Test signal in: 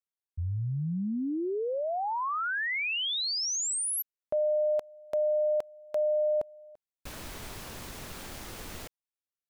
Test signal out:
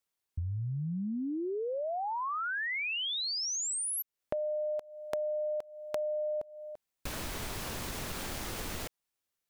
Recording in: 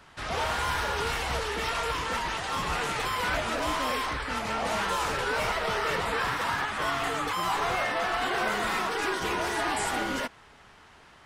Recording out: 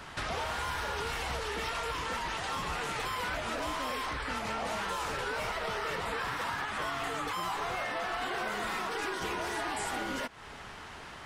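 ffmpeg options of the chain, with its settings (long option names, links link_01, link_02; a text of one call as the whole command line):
ffmpeg -i in.wav -af "acompressor=threshold=-44dB:ratio=4:attack=31:release=187:knee=6:detection=rms,volume=8dB" out.wav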